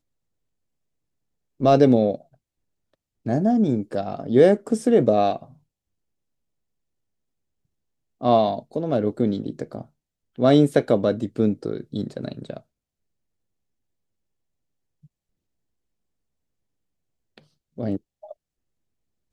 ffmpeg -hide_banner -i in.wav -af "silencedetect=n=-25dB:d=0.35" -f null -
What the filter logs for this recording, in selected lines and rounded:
silence_start: 0.00
silence_end: 1.61 | silence_duration: 1.61
silence_start: 2.15
silence_end: 3.26 | silence_duration: 1.11
silence_start: 5.36
silence_end: 8.23 | silence_duration: 2.86
silence_start: 9.81
silence_end: 10.39 | silence_duration: 0.58
silence_start: 12.57
silence_end: 17.79 | silence_duration: 5.22
silence_start: 17.97
silence_end: 19.33 | silence_duration: 1.36